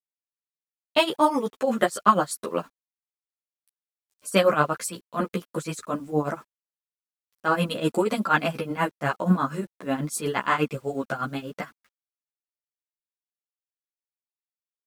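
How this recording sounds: tremolo triangle 8.3 Hz, depth 90%; a quantiser's noise floor 10-bit, dither none; a shimmering, thickened sound

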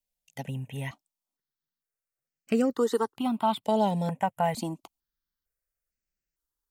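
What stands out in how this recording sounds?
notches that jump at a steady rate 2.2 Hz 330–3500 Hz

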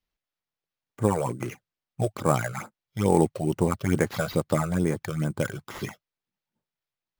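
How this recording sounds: phasing stages 8, 2.3 Hz, lowest notch 250–4100 Hz; aliases and images of a low sample rate 8600 Hz, jitter 0%

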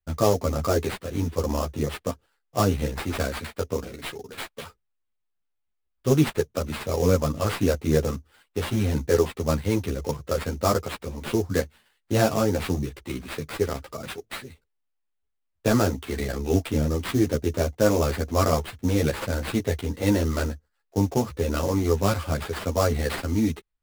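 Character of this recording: aliases and images of a low sample rate 6200 Hz, jitter 20%; a shimmering, thickened sound

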